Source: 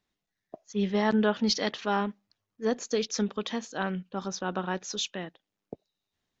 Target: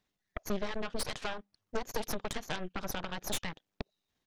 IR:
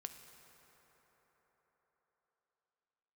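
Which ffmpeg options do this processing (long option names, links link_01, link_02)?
-af "atempo=1.5,acompressor=threshold=-37dB:ratio=12,aeval=exprs='0.0596*(cos(1*acos(clip(val(0)/0.0596,-1,1)))-cos(1*PI/2))+0.0237*(cos(8*acos(clip(val(0)/0.0596,-1,1)))-cos(8*PI/2))':channel_layout=same,volume=1dB"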